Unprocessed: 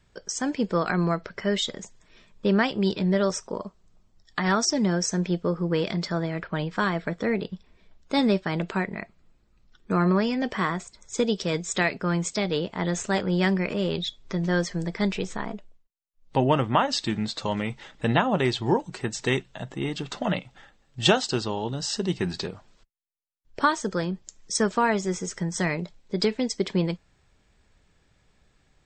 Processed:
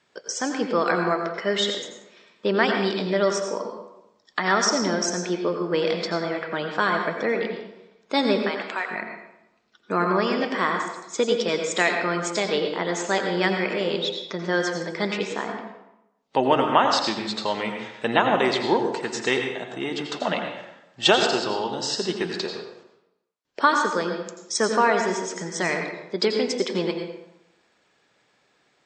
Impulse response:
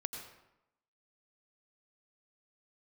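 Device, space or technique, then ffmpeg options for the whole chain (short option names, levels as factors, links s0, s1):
supermarket ceiling speaker: -filter_complex "[0:a]asettb=1/sr,asplit=3[s0][s1][s2];[s0]atrim=end=8.394[s3];[s1]atrim=start=8.39:end=8.91,asetpts=PTS-STARTPTS,afade=t=in:d=0.004:c=qsin,afade=t=out:st=0.516:d=0.004:c=qsin,highpass=790[s4];[s2]atrim=start=8.906[s5];[s3][s4]acrossfade=d=0.004:c1=hsin:c2=qsin[s6];[s6][s5]acrossfade=d=0.004:c1=qsin:c2=hsin,highpass=330,lowpass=6800[s7];[1:a]atrim=start_sample=2205[s8];[s7][s8]afir=irnorm=-1:irlink=0,volume=1.78"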